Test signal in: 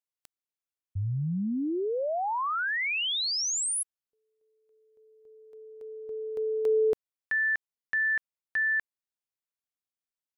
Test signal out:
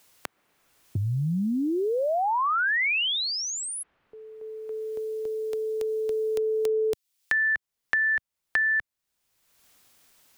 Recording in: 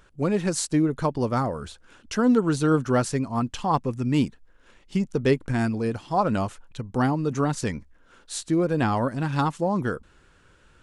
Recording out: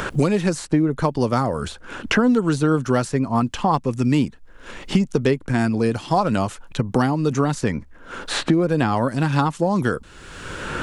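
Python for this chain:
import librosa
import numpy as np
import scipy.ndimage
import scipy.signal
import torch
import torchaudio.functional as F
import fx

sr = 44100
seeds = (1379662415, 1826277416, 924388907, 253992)

y = fx.band_squash(x, sr, depth_pct=100)
y = y * librosa.db_to_amplitude(3.5)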